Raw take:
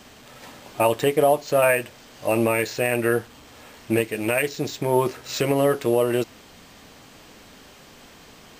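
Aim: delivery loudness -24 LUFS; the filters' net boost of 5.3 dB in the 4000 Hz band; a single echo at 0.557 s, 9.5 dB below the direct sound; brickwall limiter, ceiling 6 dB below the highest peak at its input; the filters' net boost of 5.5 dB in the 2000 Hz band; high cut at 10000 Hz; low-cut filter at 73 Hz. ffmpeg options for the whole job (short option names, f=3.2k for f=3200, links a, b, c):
-af "highpass=73,lowpass=10k,equalizer=f=2k:t=o:g=5.5,equalizer=f=4k:t=o:g=5,alimiter=limit=-10.5dB:level=0:latency=1,aecho=1:1:557:0.335,volume=-1dB"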